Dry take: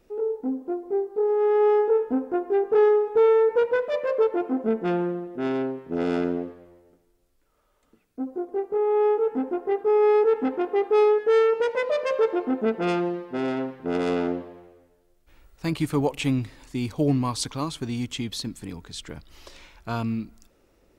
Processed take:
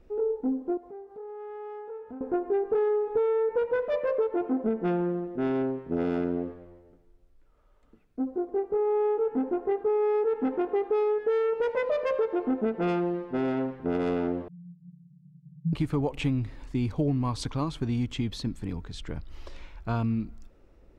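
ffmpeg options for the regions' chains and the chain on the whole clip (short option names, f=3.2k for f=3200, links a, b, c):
-filter_complex "[0:a]asettb=1/sr,asplit=3[a][b][c];[a]atrim=end=0.774[d];[b]atrim=start=0.77:end=2.21,asetpts=PTS-STARTPTS,afade=t=in:d=0.004:c=qsin,afade=t=out:st=1.436:d=0.004:c=qsin,highpass=54,equalizer=f=340:t=o:w=0.6:g=-13,acompressor=threshold=-45dB:ratio=2.5:attack=3.2:release=140:knee=1:detection=peak[e];[c]atrim=start=2.206[f];[d][e]acrossfade=d=0.004:c1=hsin:c2=qsin[g];[g][f]acrossfade=d=0.004:c1=qsin:c2=hsin,asettb=1/sr,asplit=3[h][i][j];[h]atrim=end=14.484[k];[i]atrim=start=14.48:end=15.73,asetpts=PTS-STARTPTS,afade=t=in:d=0.004:c=qsin,afade=t=out:st=1.246:d=0.004:c=qsin,aeval=exprs='val(0)+0.5*0.0316*sgn(val(0))':c=same,asuperpass=centerf=160:order=8:qfactor=3.2[l];[j]atrim=start=15.726[m];[k][l]acrossfade=d=0.004:c1=hsin:c2=qsin[n];[n][m]acrossfade=d=0.004:c1=qsin:c2=hsin,lowpass=f=2.1k:p=1,lowshelf=f=94:g=11.5,acompressor=threshold=-23dB:ratio=6"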